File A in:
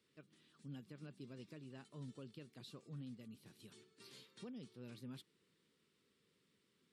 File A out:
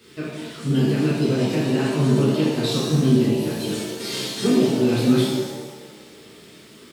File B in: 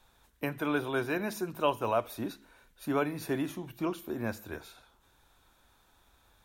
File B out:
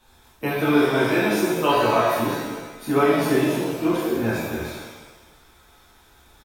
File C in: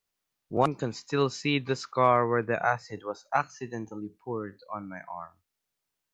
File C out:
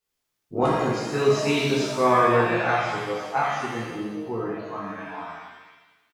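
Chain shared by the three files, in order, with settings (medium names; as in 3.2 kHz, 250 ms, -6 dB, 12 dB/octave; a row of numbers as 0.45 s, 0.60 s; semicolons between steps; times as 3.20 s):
doubling 14 ms -14 dB; pitch-shifted reverb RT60 1.2 s, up +7 st, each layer -8 dB, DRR -8 dB; peak normalisation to -6 dBFS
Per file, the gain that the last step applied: +23.0 dB, +2.0 dB, -4.5 dB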